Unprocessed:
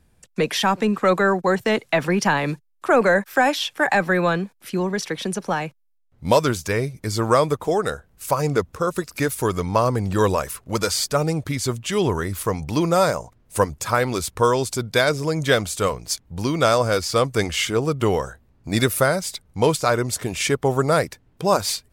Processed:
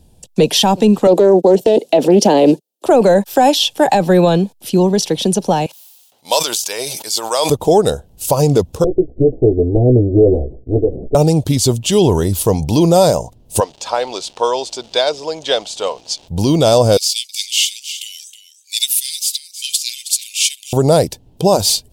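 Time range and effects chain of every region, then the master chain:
1.07–2.86 s: high-pass 240 Hz 24 dB/octave + resonant low shelf 730 Hz +8 dB, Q 1.5 + loudspeaker Doppler distortion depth 0.16 ms
5.66–7.50 s: high-pass 1.1 kHz + decay stretcher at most 41 dB/s
8.84–11.15 s: comb filter that takes the minimum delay 2.6 ms + steep low-pass 580 Hz 48 dB/octave + doubling 16 ms -7 dB
13.59–16.27 s: high-pass 760 Hz + crackle 360 per s -34 dBFS + distance through air 130 m
16.97–20.73 s: steep high-pass 2.2 kHz 72 dB/octave + delay 319 ms -12.5 dB
whole clip: high-order bell 1.6 kHz -15.5 dB 1.3 oct; loudness maximiser +12 dB; trim -1 dB

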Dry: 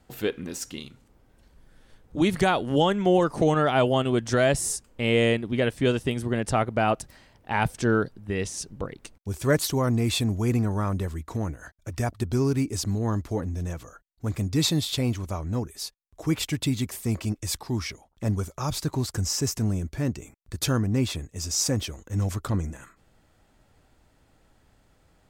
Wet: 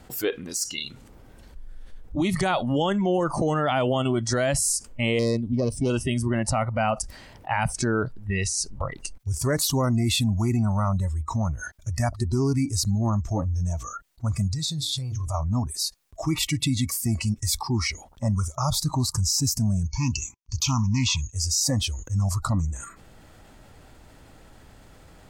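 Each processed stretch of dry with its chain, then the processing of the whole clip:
5.19–5.90 s: self-modulated delay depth 0.1 ms + peaking EQ 1.7 kHz -14.5 dB 1.5 oct
14.49–15.34 s: hum notches 60/120/180/240/300/360/420/480/540/600 Hz + compression, threshold -32 dBFS
19.84–21.33 s: expander -43 dBFS + FFT filter 120 Hz 0 dB, 360 Hz -5 dB, 560 Hz -20 dB, 1 kHz +9 dB, 1.6 kHz -9 dB, 2.7 kHz +9 dB, 3.9 kHz +4 dB, 6.4 kHz +13 dB, 9.3 kHz -13 dB, 14 kHz -1 dB + loudspeaker Doppler distortion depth 0.15 ms
whole clip: spectral noise reduction 19 dB; peak limiter -18 dBFS; level flattener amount 50%; trim +2 dB

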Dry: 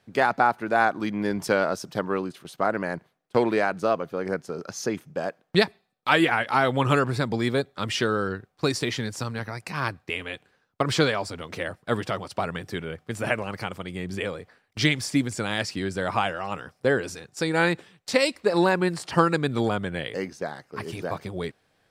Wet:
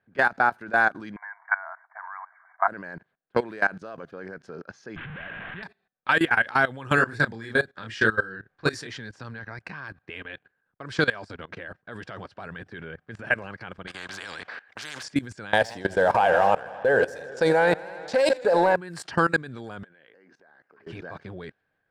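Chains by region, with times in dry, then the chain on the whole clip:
1.16–2.68 s: companding laws mixed up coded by mu + brick-wall FIR band-pass 640–2300 Hz + peaking EQ 1 kHz +8 dB 0.5 oct
4.96–5.63 s: one-bit delta coder 16 kbps, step -18 dBFS + peaking EQ 480 Hz -12.5 dB 2 oct
6.95–8.87 s: peaking EQ 1.7 kHz +5.5 dB 0.31 oct + doubling 27 ms -3 dB
13.87–15.03 s: high-pass 1.1 kHz 6 dB/octave + spectrum-flattening compressor 4:1
15.53–18.76 s: high-order bell 650 Hz +12.5 dB 1.3 oct + waveshaping leveller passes 1 + modulated delay 81 ms, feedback 77%, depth 102 cents, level -16.5 dB
19.83–20.87 s: high-pass 260 Hz + compression 10:1, threshold -40 dBFS
whole clip: level-controlled noise filter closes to 2.1 kHz, open at -17.5 dBFS; peaking EQ 1.6 kHz +12 dB 0.23 oct; level held to a coarse grid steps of 19 dB

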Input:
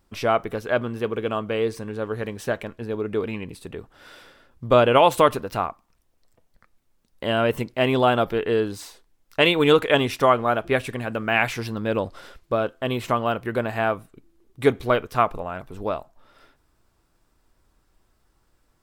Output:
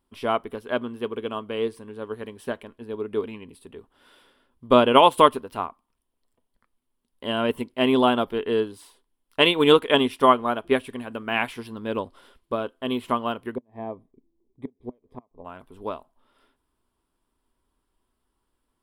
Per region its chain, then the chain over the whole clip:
13.55–15.45 s: boxcar filter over 31 samples + inverted gate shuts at -16 dBFS, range -31 dB
whole clip: graphic EQ with 31 bands 125 Hz -5 dB, 250 Hz +9 dB, 400 Hz +6 dB, 1 kHz +8 dB, 3.15 kHz +8 dB, 6.3 kHz -6 dB, 10 kHz +10 dB; upward expansion 1.5:1, over -30 dBFS; trim -1.5 dB

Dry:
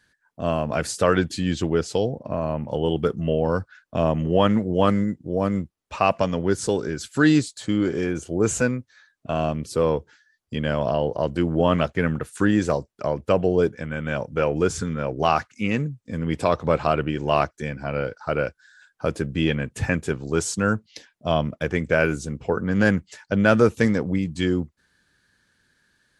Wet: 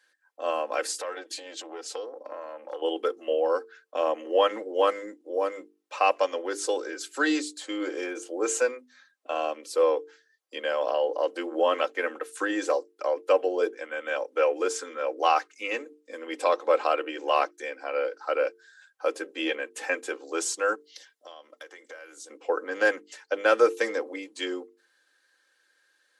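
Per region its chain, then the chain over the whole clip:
0.99–2.82 s: compression 4:1, threshold -27 dBFS + transformer saturation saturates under 560 Hz
20.75–22.30 s: tilt shelf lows -5 dB, about 1.5 kHz + compression 16:1, threshold -36 dBFS + band-stop 2.5 kHz, Q 5.3
whole clip: steep high-pass 340 Hz 48 dB/octave; hum notches 50/100/150/200/250/300/350/400/450 Hz; comb 3.8 ms, depth 60%; trim -3 dB

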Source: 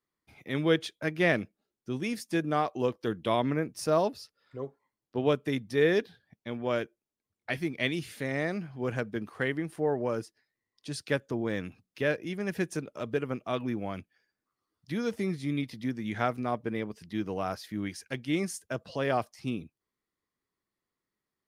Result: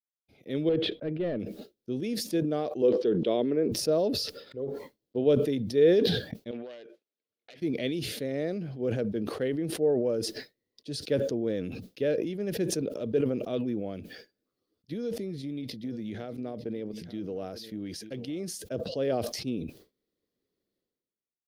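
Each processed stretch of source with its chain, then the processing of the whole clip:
0.69–1.40 s: hard clipper -25 dBFS + distance through air 480 m
2.82–3.72 s: band-pass 190–5500 Hz + peaking EQ 400 Hz +8.5 dB 0.26 oct
6.51–7.62 s: self-modulated delay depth 0.3 ms + compression 12:1, threshold -37 dBFS + band-pass filter 1.7 kHz, Q 0.71
14.93–18.52 s: compression, threshold -31 dBFS + delay 895 ms -20 dB
whole clip: expander -56 dBFS; ten-band graphic EQ 250 Hz +4 dB, 500 Hz +11 dB, 1 kHz -12 dB, 2 kHz -5 dB, 4 kHz +5 dB, 8 kHz -7 dB; decay stretcher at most 41 dB/s; trim -5 dB

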